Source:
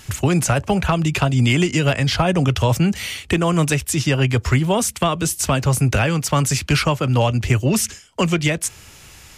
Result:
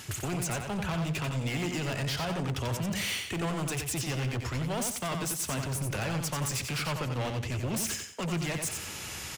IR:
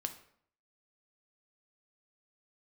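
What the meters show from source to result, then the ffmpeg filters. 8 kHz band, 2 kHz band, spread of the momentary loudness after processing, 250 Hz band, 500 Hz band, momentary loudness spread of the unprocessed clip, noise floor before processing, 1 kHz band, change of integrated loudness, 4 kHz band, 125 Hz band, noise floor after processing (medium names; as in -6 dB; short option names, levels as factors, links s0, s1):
-9.5 dB, -12.0 dB, 2 LU, -14.5 dB, -14.5 dB, 3 LU, -44 dBFS, -13.5 dB, -13.0 dB, -10.5 dB, -14.5 dB, -40 dBFS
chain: -af "highpass=100,areverse,acompressor=threshold=0.0316:ratio=5,areverse,volume=50.1,asoftclip=hard,volume=0.02,aecho=1:1:90|180|270|360:0.531|0.149|0.0416|0.0117,volume=1.5"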